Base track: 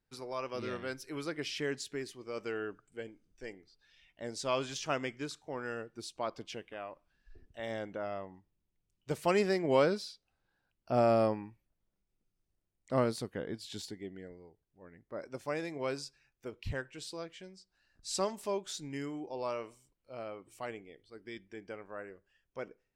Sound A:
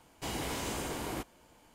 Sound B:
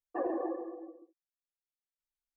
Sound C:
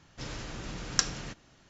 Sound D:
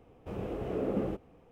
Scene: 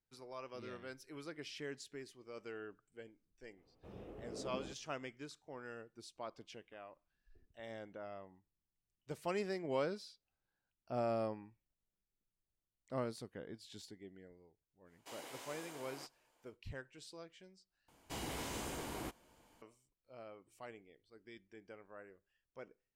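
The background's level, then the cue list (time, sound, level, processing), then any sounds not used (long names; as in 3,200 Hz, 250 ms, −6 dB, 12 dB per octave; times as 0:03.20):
base track −10 dB
0:03.57: mix in D −15 dB
0:14.84: mix in A −13 dB, fades 0.10 s + high-pass filter 440 Hz
0:17.88: overwrite with A −6.5 dB
not used: B, C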